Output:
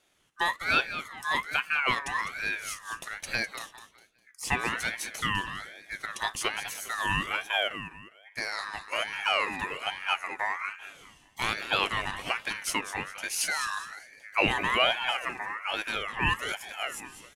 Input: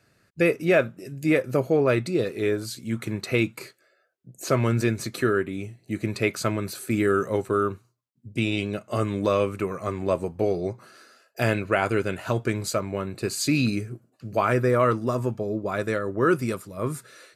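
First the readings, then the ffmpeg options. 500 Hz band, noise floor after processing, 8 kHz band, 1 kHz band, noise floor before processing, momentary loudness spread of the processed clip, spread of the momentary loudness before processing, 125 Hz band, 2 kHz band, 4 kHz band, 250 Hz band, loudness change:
−14.5 dB, −60 dBFS, 0.0 dB, −0.5 dB, −66 dBFS, 12 LU, 10 LU, −16.0 dB, +3.0 dB, +6.5 dB, −16.5 dB, −4.5 dB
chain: -af "equalizer=frequency=125:width_type=o:width=1:gain=-6,equalizer=frequency=1000:width_type=o:width=1:gain=11,equalizer=frequency=8000:width_type=o:width=1:gain=11,aecho=1:1:203|406|609|812:0.282|0.093|0.0307|0.0101,aeval=exprs='val(0)*sin(2*PI*1700*n/s+1700*0.2/1.2*sin(2*PI*1.2*n/s))':channel_layout=same,volume=-6dB"

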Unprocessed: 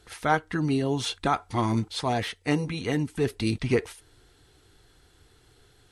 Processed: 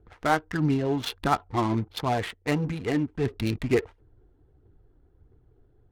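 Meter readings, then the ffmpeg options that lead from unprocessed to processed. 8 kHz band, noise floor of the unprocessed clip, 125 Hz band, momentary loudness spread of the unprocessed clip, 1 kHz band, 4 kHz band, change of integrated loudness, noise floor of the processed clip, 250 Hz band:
−4.5 dB, −60 dBFS, 0.0 dB, 3 LU, +0.5 dB, −2.5 dB, 0.0 dB, −62 dBFS, +0.5 dB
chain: -af "aphaser=in_gain=1:out_gain=1:delay=3.7:decay=0.33:speed=1.5:type=triangular,adynamicsmooth=sensitivity=5.5:basefreq=500"

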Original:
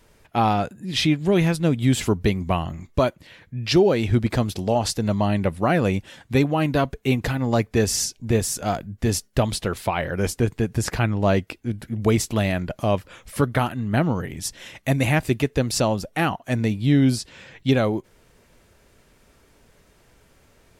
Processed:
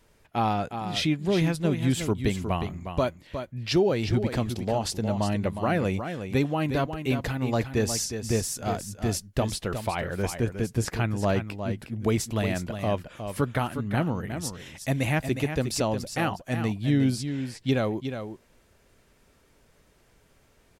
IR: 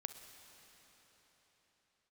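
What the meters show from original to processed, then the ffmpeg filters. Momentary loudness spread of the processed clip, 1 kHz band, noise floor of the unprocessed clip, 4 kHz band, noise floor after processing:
7 LU, −5.0 dB, −58 dBFS, −5.0 dB, −62 dBFS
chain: -af "aecho=1:1:361:0.376,volume=-5.5dB"

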